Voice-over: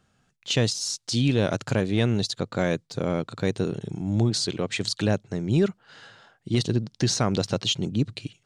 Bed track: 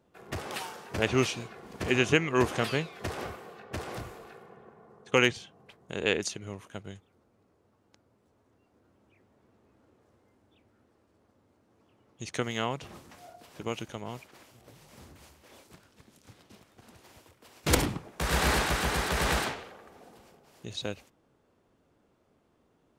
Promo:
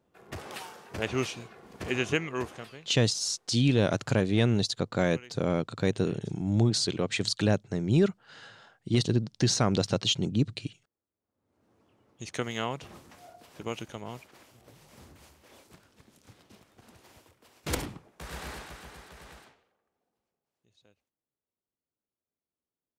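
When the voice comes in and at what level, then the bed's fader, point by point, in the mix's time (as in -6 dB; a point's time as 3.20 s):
2.40 s, -1.5 dB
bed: 2.25 s -4 dB
3.05 s -26 dB
11.17 s -26 dB
11.65 s -1 dB
17.15 s -1 dB
19.93 s -29.5 dB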